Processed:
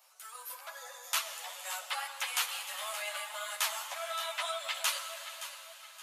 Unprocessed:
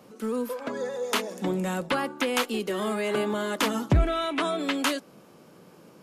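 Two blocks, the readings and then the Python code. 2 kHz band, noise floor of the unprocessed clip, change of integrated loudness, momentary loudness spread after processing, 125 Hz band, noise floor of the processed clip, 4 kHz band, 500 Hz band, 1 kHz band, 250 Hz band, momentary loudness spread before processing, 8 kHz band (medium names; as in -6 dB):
-5.5 dB, -53 dBFS, -8.0 dB, 12 LU, under -40 dB, -52 dBFS, -2.5 dB, -17.5 dB, -8.0 dB, under -40 dB, 7 LU, +2.0 dB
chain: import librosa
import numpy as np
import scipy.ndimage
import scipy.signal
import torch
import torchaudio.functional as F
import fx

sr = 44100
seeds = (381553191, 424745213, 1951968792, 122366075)

y = scipy.signal.sosfilt(scipy.signal.butter(12, 590.0, 'highpass', fs=sr, output='sos'), x)
y = fx.tilt_eq(y, sr, slope=3.5)
y = fx.echo_feedback(y, sr, ms=571, feedback_pct=37, wet_db=-12.5)
y = fx.rev_plate(y, sr, seeds[0], rt60_s=4.0, hf_ratio=1.0, predelay_ms=0, drr_db=7.0)
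y = fx.ensemble(y, sr)
y = y * librosa.db_to_amplitude(-6.5)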